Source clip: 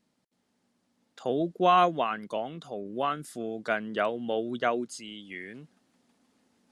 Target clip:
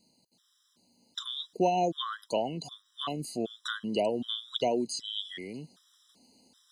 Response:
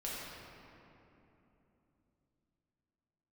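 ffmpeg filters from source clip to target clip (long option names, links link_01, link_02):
-filter_complex "[0:a]acrossover=split=670|4400[link_01][link_02][link_03];[link_01]acompressor=threshold=-29dB:ratio=4[link_04];[link_02]acompressor=threshold=-36dB:ratio=4[link_05];[link_03]acompressor=threshold=-55dB:ratio=4[link_06];[link_04][link_05][link_06]amix=inputs=3:normalize=0,highshelf=frequency=2900:width_type=q:width=3:gain=8,afftfilt=real='re*gt(sin(2*PI*1.3*pts/sr)*(1-2*mod(floor(b*sr/1024/1000),2)),0)':imag='im*gt(sin(2*PI*1.3*pts/sr)*(1-2*mod(floor(b*sr/1024/1000),2)),0)':win_size=1024:overlap=0.75,volume=4.5dB"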